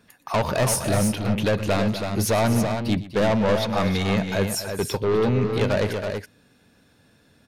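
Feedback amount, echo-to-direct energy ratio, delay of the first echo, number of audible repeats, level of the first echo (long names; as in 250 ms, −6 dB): repeats not evenly spaced, −5.0 dB, 120 ms, 3, −17.0 dB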